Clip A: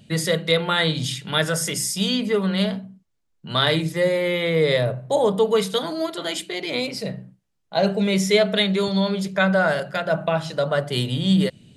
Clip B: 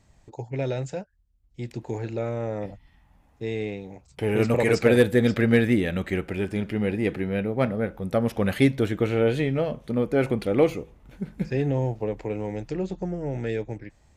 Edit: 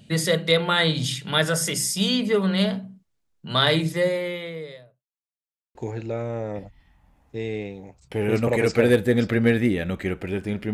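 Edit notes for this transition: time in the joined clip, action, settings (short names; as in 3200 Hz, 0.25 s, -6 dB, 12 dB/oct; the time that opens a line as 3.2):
clip A
3.93–5.05 fade out quadratic
5.05–5.75 mute
5.75 switch to clip B from 1.82 s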